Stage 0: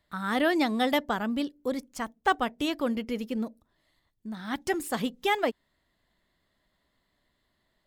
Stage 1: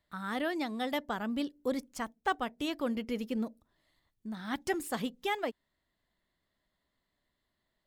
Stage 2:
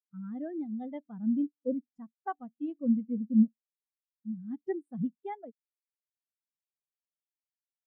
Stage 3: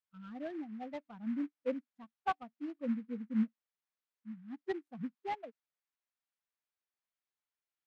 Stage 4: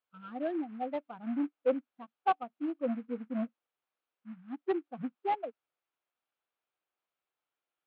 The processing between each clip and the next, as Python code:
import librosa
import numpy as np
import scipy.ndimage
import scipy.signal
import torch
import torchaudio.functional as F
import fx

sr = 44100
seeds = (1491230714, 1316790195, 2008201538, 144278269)

y1 = fx.rider(x, sr, range_db=4, speed_s=0.5)
y1 = F.gain(torch.from_numpy(y1), -5.5).numpy()
y2 = fx.peak_eq(y1, sr, hz=160.0, db=10.5, octaves=0.87)
y2 = fx.spectral_expand(y2, sr, expansion=2.5)
y2 = F.gain(torch.from_numpy(y2), 2.5).numpy()
y3 = fx.bandpass_q(y2, sr, hz=1500.0, q=0.68)
y3 = fx.noise_mod_delay(y3, sr, seeds[0], noise_hz=1500.0, depth_ms=0.034)
y3 = F.gain(torch.from_numpy(y3), 4.5).numpy()
y4 = 10.0 ** (-29.0 / 20.0) * np.tanh(y3 / 10.0 ** (-29.0 / 20.0))
y4 = fx.cabinet(y4, sr, low_hz=140.0, low_slope=12, high_hz=3400.0, hz=(200.0, 340.0, 510.0, 740.0, 1300.0, 1900.0), db=(-9, 3, 4, 4, 3, -5))
y4 = F.gain(torch.from_numpy(y4), 6.0).numpy()